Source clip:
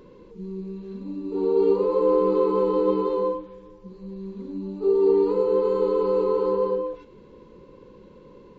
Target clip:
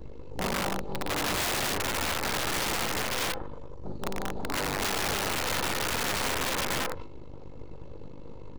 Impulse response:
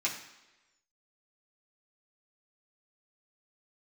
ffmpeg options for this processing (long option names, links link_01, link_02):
-filter_complex "[0:a]aeval=exprs='val(0)+0.00501*(sin(2*PI*50*n/s)+sin(2*PI*2*50*n/s)/2+sin(2*PI*3*50*n/s)/3+sin(2*PI*4*50*n/s)/4+sin(2*PI*5*50*n/s)/5)':channel_layout=same,alimiter=limit=-19dB:level=0:latency=1:release=165,bass=frequency=250:gain=12,treble=frequency=4000:gain=4,asplit=2[link_01][link_02];[link_02]adelay=106,lowpass=frequency=810:poles=1,volume=-21.5dB,asplit=2[link_03][link_04];[link_04]adelay=106,lowpass=frequency=810:poles=1,volume=0.37,asplit=2[link_05][link_06];[link_06]adelay=106,lowpass=frequency=810:poles=1,volume=0.37[link_07];[link_01][link_03][link_05][link_07]amix=inputs=4:normalize=0,asplit=2[link_08][link_09];[1:a]atrim=start_sample=2205,adelay=12[link_10];[link_09][link_10]afir=irnorm=-1:irlink=0,volume=-11.5dB[link_11];[link_08][link_11]amix=inputs=2:normalize=0,aeval=exprs='0.224*(cos(1*acos(clip(val(0)/0.224,-1,1)))-cos(1*PI/2))+0.0316*(cos(3*acos(clip(val(0)/0.224,-1,1)))-cos(3*PI/2))+0.112*(cos(6*acos(clip(val(0)/0.224,-1,1)))-cos(6*PI/2))+0.0126*(cos(7*acos(clip(val(0)/0.224,-1,1)))-cos(7*PI/2))+0.1*(cos(8*acos(clip(val(0)/0.224,-1,1)))-cos(8*PI/2))':channel_layout=same,equalizer=frequency=400:width_type=o:width=0.24:gain=-5,bandreject=frequency=50:width_type=h:width=6,bandreject=frequency=100:width_type=h:width=6,bandreject=frequency=150:width_type=h:width=6,bandreject=frequency=200:width_type=h:width=6,bandreject=frequency=250:width_type=h:width=6,bandreject=frequency=300:width_type=h:width=6,bandreject=frequency=350:width_type=h:width=6,aecho=1:1:2.3:0.42,aeval=exprs='(mod(15*val(0)+1,2)-1)/15':channel_layout=same"